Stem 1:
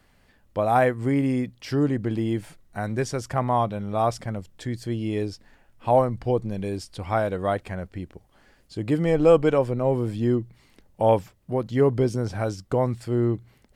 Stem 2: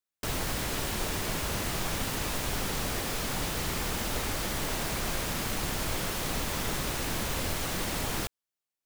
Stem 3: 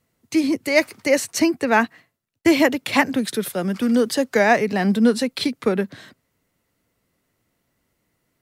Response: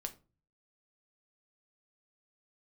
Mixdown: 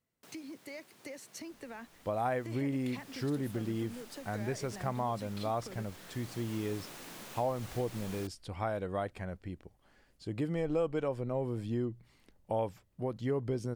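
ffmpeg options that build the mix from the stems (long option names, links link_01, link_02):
-filter_complex "[0:a]adelay=1500,volume=-8dB[link_01];[1:a]highpass=frequency=150:width=0.5412,highpass=frequency=150:width=1.3066,volume=-14.5dB,afade=type=in:start_time=2.61:duration=0.59:silence=0.375837[link_02];[2:a]alimiter=limit=-10.5dB:level=0:latency=1,acompressor=threshold=-30dB:ratio=4,volume=-15dB,asplit=2[link_03][link_04];[link_04]apad=whole_len=390288[link_05];[link_02][link_05]sidechaincompress=threshold=-48dB:ratio=8:attack=30:release=1330[link_06];[link_01][link_06][link_03]amix=inputs=3:normalize=0,acompressor=threshold=-31dB:ratio=2.5"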